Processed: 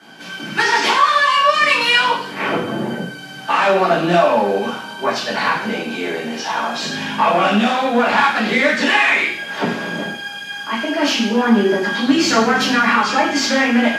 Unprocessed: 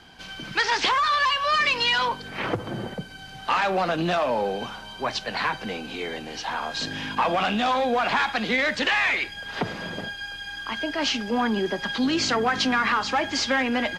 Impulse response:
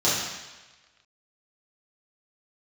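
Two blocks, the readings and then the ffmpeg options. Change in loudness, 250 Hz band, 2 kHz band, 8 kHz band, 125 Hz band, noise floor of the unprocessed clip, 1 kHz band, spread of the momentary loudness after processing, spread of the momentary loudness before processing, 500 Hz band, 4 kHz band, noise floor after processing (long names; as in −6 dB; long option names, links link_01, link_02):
+8.0 dB, +10.0 dB, +8.0 dB, +8.0 dB, +7.0 dB, −40 dBFS, +8.0 dB, 11 LU, 12 LU, +9.5 dB, +6.0 dB, −32 dBFS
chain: -filter_complex "[0:a]asoftclip=type=tanh:threshold=-15dB[link_01];[1:a]atrim=start_sample=2205,asetrate=83790,aresample=44100[link_02];[link_01][link_02]afir=irnorm=-1:irlink=0,volume=-2dB"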